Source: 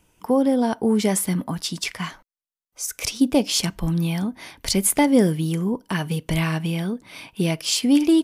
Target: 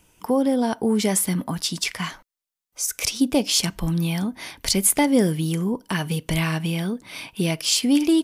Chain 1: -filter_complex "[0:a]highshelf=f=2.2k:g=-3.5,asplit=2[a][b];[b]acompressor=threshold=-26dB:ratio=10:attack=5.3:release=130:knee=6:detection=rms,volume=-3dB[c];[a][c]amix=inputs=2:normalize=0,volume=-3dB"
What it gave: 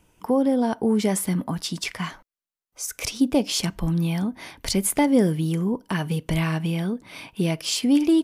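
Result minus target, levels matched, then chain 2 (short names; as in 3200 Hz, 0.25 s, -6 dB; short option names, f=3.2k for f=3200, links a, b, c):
4000 Hz band -3.5 dB
-filter_complex "[0:a]highshelf=f=2.2k:g=4,asplit=2[a][b];[b]acompressor=threshold=-26dB:ratio=10:attack=5.3:release=130:knee=6:detection=rms,volume=-3dB[c];[a][c]amix=inputs=2:normalize=0,volume=-3dB"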